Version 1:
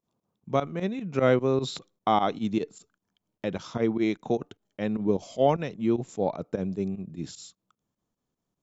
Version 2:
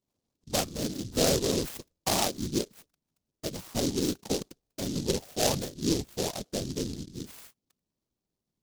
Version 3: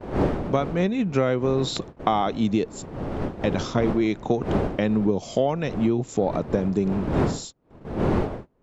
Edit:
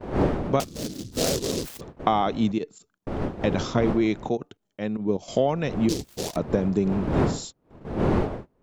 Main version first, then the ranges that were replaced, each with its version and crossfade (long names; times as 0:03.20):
3
0:00.60–0:01.81: punch in from 2
0:02.52–0:03.07: punch in from 1
0:04.29–0:05.28: punch in from 1
0:05.89–0:06.36: punch in from 2